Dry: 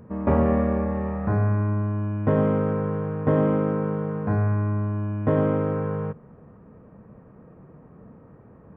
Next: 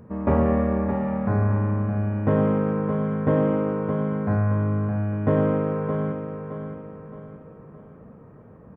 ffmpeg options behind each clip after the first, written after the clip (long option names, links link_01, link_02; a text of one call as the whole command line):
ffmpeg -i in.wav -af "aecho=1:1:617|1234|1851|2468|3085:0.398|0.167|0.0702|0.0295|0.0124" out.wav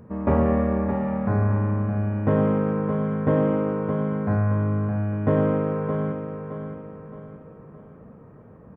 ffmpeg -i in.wav -af anull out.wav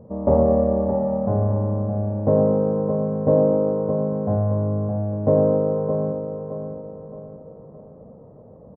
ffmpeg -i in.wav -af "firequalizer=gain_entry='entry(380,0);entry(550,9);entry(1500,-17);entry(2600,-21)':delay=0.05:min_phase=1" out.wav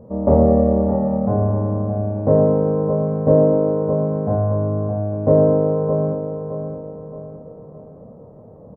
ffmpeg -i in.wav -filter_complex "[0:a]asplit=2[link_01][link_02];[link_02]adelay=26,volume=-5dB[link_03];[link_01][link_03]amix=inputs=2:normalize=0,volume=2dB" out.wav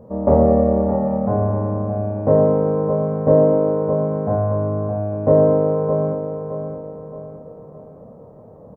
ffmpeg -i in.wav -af "tiltshelf=frequency=690:gain=-3.5,volume=1.5dB" out.wav